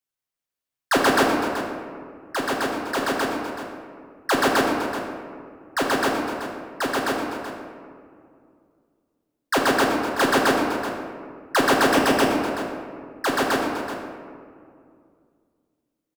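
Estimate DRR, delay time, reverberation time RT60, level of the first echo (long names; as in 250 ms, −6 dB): −2.0 dB, 379 ms, 2.2 s, −12.0 dB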